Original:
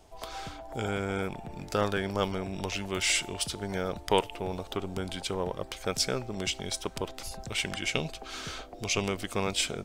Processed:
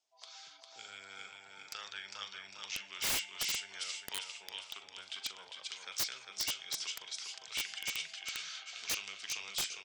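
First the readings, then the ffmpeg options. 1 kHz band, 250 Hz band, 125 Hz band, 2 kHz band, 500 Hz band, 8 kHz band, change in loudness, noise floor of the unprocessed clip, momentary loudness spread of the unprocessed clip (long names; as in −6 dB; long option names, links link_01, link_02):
−15.5 dB, −26.0 dB, −27.0 dB, −7.0 dB, −25.5 dB, −4.5 dB, −6.5 dB, −47 dBFS, 10 LU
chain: -filter_complex "[0:a]lowpass=frequency=6500:width=0.5412,lowpass=frequency=6500:width=1.3066,bandreject=frequency=106.3:width_type=h:width=4,bandreject=frequency=212.6:width_type=h:width=4,bandreject=frequency=318.9:width_type=h:width=4,bandreject=frequency=425.2:width_type=h:width=4,bandreject=frequency=531.5:width_type=h:width=4,bandreject=frequency=637.8:width_type=h:width=4,bandreject=frequency=744.1:width_type=h:width=4,bandreject=frequency=850.4:width_type=h:width=4,bandreject=frequency=956.7:width_type=h:width=4,bandreject=frequency=1063:width_type=h:width=4,bandreject=frequency=1169.3:width_type=h:width=4,bandreject=frequency=1275.6:width_type=h:width=4,bandreject=frequency=1381.9:width_type=h:width=4,bandreject=frequency=1488.2:width_type=h:width=4,bandreject=frequency=1594.5:width_type=h:width=4,bandreject=frequency=1700.8:width_type=h:width=4,bandreject=frequency=1807.1:width_type=h:width=4,bandreject=frequency=1913.4:width_type=h:width=4,bandreject=frequency=2019.7:width_type=h:width=4,bandreject=frequency=2126:width_type=h:width=4,bandreject=frequency=2232.3:width_type=h:width=4,bandreject=frequency=2338.6:width_type=h:width=4,bandreject=frequency=2444.9:width_type=h:width=4,bandreject=frequency=2551.2:width_type=h:width=4,bandreject=frequency=2657.5:width_type=h:width=4,bandreject=frequency=2763.8:width_type=h:width=4,bandreject=frequency=2870.1:width_type=h:width=4,bandreject=frequency=2976.4:width_type=h:width=4,bandreject=frequency=3082.7:width_type=h:width=4,bandreject=frequency=3189:width_type=h:width=4,bandreject=frequency=3295.3:width_type=h:width=4,bandreject=frequency=3401.6:width_type=h:width=4,bandreject=frequency=3507.9:width_type=h:width=4,bandreject=frequency=3614.2:width_type=h:width=4,bandreject=frequency=3720.5:width_type=h:width=4,acrossover=split=110|1100|2600[link_01][link_02][link_03][link_04];[link_03]dynaudnorm=framelen=660:gausssize=3:maxgain=11dB[link_05];[link_01][link_02][link_05][link_04]amix=inputs=4:normalize=0,asplit=2[link_06][link_07];[link_07]adelay=41,volume=-12.5dB[link_08];[link_06][link_08]amix=inputs=2:normalize=0,acrossover=split=150|3000[link_09][link_10][link_11];[link_10]acompressor=threshold=-40dB:ratio=2[link_12];[link_09][link_12][link_11]amix=inputs=3:normalize=0,aderivative,afftdn=noise_reduction=13:noise_floor=-63,aecho=1:1:402|804|1206|1608|2010:0.596|0.256|0.11|0.0474|0.0204,aeval=exprs='(mod(20*val(0)+1,2)-1)/20':channel_layout=same"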